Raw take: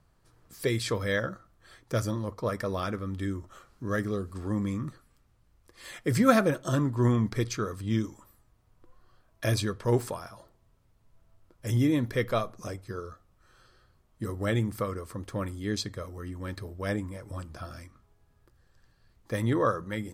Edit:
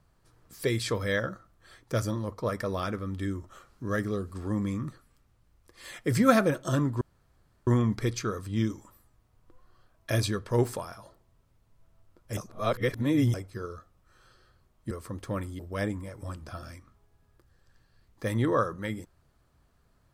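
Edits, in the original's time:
7.01 insert room tone 0.66 s
11.71–12.68 reverse
14.25–14.96 cut
15.64–16.67 cut

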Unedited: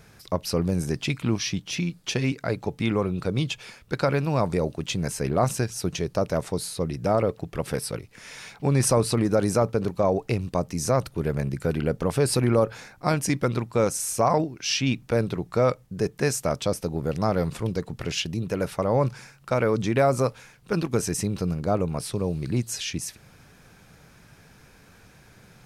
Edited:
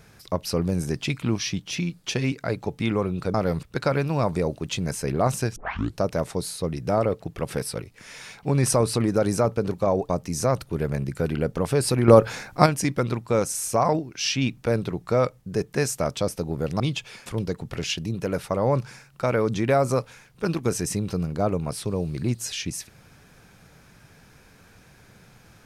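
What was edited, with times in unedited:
3.34–3.8 swap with 17.25–17.54
5.73 tape start 0.42 s
10.26–10.54 cut
12.53–13.11 gain +8 dB

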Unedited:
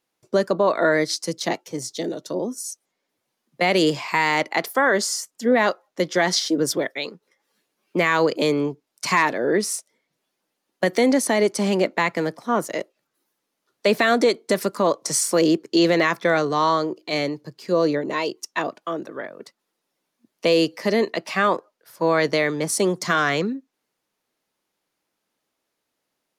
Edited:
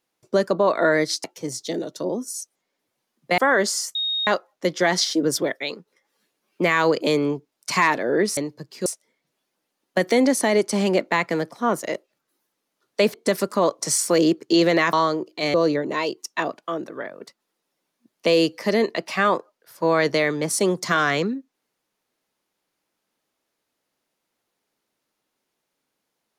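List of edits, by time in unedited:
1.24–1.54 cut
3.68–4.73 cut
5.3–5.62 bleep 3730 Hz -21.5 dBFS
14–14.37 cut
16.16–16.63 cut
17.24–17.73 move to 9.72

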